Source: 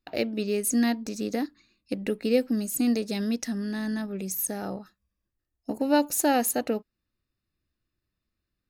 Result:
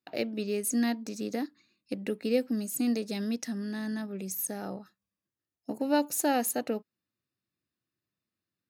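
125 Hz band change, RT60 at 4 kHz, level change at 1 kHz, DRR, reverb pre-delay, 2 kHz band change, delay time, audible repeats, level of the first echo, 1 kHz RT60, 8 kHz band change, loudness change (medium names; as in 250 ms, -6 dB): no reading, no reverb, -4.0 dB, no reverb, no reverb, -4.0 dB, no echo, no echo, no echo, no reverb, -4.0 dB, -4.0 dB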